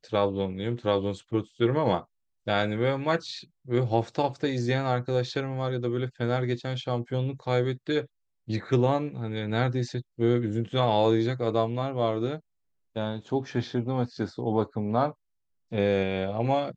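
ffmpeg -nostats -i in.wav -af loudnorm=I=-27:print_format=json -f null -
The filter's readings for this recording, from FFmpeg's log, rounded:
"input_i" : "-28.0",
"input_tp" : "-9.7",
"input_lra" : "1.8",
"input_thresh" : "-38.2",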